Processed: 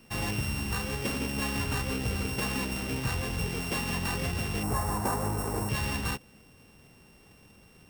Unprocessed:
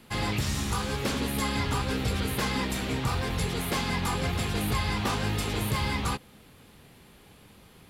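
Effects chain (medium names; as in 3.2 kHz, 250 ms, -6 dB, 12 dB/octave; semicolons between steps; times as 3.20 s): sorted samples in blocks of 16 samples; 4.63–5.69 s: FFT filter 220 Hz 0 dB, 990 Hz +8 dB, 3.1 kHz -15 dB, 8.6 kHz +3 dB; trim -2.5 dB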